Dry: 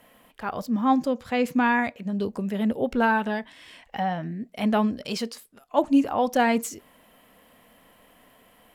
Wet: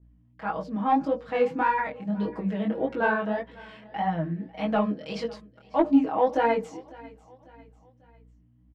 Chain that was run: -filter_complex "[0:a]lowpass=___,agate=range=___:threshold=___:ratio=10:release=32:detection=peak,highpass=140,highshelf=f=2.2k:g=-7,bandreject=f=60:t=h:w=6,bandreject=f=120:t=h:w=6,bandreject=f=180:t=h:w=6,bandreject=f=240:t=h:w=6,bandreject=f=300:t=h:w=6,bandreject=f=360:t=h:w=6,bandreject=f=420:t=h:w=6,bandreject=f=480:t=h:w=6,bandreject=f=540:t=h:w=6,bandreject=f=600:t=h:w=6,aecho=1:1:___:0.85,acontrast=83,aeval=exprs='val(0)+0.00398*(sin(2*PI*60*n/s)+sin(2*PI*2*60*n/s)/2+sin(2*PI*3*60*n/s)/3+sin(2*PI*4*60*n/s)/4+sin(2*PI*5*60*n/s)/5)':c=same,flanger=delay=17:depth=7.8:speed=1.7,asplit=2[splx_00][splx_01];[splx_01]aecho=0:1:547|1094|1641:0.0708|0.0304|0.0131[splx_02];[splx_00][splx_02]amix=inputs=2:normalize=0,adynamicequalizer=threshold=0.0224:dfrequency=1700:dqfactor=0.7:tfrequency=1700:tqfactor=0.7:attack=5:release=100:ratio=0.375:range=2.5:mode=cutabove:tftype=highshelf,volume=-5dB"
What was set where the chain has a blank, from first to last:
4.3k, -29dB, -53dB, 6.3